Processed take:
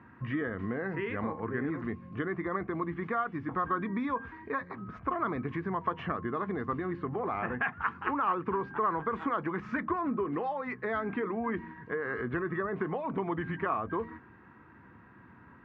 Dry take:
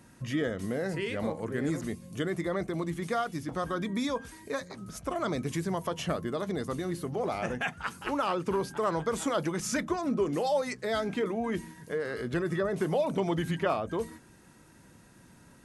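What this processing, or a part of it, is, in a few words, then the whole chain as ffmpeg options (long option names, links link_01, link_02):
bass amplifier: -af "acompressor=threshold=-31dB:ratio=3,highpass=74,equalizer=frequency=81:width_type=q:width=4:gain=4,equalizer=frequency=160:width_type=q:width=4:gain=-5,equalizer=frequency=580:width_type=q:width=4:gain=-9,equalizer=frequency=1100:width_type=q:width=4:gain=9,equalizer=frequency=1700:width_type=q:width=4:gain=4,lowpass=frequency=2200:width=0.5412,lowpass=frequency=2200:width=1.3066,volume=2dB"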